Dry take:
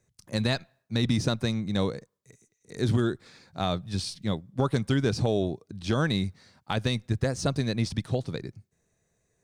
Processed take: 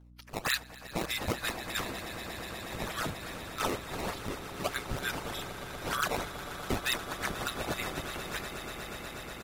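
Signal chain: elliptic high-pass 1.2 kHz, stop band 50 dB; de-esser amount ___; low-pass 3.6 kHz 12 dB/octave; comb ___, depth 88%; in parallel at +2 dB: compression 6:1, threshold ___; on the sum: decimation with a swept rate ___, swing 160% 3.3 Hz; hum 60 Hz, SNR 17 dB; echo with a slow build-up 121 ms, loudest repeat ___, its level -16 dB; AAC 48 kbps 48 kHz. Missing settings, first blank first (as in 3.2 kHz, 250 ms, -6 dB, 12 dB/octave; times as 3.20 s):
60%, 6.9 ms, -47 dBFS, 16×, 8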